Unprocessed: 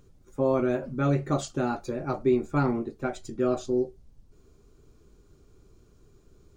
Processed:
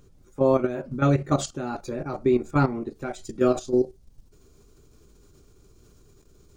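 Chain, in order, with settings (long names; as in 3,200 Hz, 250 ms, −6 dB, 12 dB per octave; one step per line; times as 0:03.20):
high-shelf EQ 3,600 Hz +2 dB, from 0:02.94 +8 dB
output level in coarse steps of 12 dB
level +6 dB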